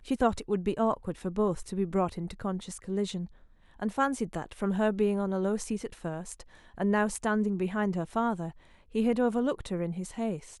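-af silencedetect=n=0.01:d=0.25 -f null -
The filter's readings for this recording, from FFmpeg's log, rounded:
silence_start: 3.26
silence_end: 3.80 | silence_duration: 0.54
silence_start: 6.41
silence_end: 6.78 | silence_duration: 0.37
silence_start: 8.51
silence_end: 8.95 | silence_duration: 0.44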